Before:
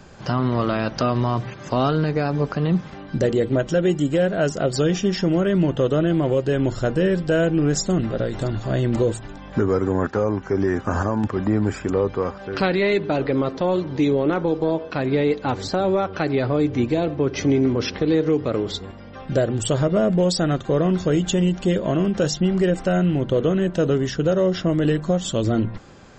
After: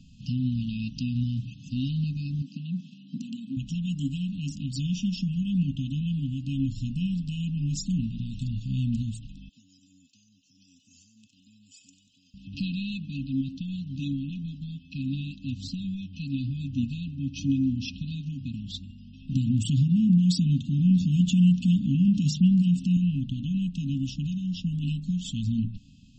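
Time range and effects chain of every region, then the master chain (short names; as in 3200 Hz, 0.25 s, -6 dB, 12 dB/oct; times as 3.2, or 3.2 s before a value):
2.42–3.57 compressor, threshold -20 dBFS + brick-wall FIR high-pass 150 Hz
9.49–12.34 differentiator + thin delay 94 ms, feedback 56%, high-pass 2200 Hz, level -11 dB
19.35–22.97 HPF 150 Hz + transient shaper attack -1 dB, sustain +4 dB + low shelf 280 Hz +11 dB
whole clip: FFT band-reject 290–2500 Hz; high shelf 5400 Hz -10 dB; gain -4.5 dB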